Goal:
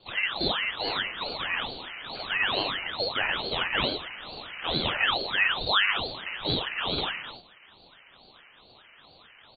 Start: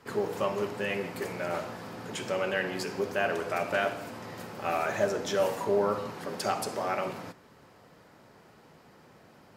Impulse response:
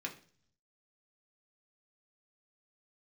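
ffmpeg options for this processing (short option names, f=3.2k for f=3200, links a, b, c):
-af "aecho=1:1:49.56|90.38:0.631|0.398,lowpass=f=2.4k:t=q:w=0.5098,lowpass=f=2.4k:t=q:w=0.6013,lowpass=f=2.4k:t=q:w=0.9,lowpass=f=2.4k:t=q:w=2.563,afreqshift=-2800,aeval=exprs='val(0)*sin(2*PI*1100*n/s+1100*0.75/2.3*sin(2*PI*2.3*n/s))':c=same,volume=3dB"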